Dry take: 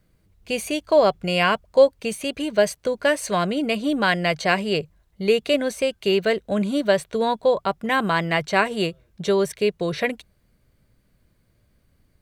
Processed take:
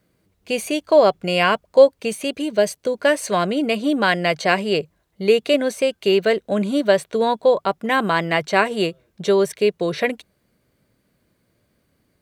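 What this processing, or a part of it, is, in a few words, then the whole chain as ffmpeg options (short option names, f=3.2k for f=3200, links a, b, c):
filter by subtraction: -filter_complex "[0:a]asplit=2[a][b];[b]lowpass=310,volume=-1[c];[a][c]amix=inputs=2:normalize=0,asettb=1/sr,asplit=3[d][e][f];[d]atrim=end=2.314[g];[e]atrim=start=2.31:end=2.94,asetpts=PTS-STARTPTS,afade=t=in:d=0.004:c=qsin,afade=t=out:st=0.626:d=0.004:c=qsin,equalizer=f=1.3k:t=o:w=2.2:g=-4.5[h];[f]atrim=start=2.936[i];[g][h]acrossfade=d=0.004:c1=hsin:c2=qsin[j];[j][i]acrossfade=d=0.004:c1=qsin:c2=hsin,volume=1.5dB"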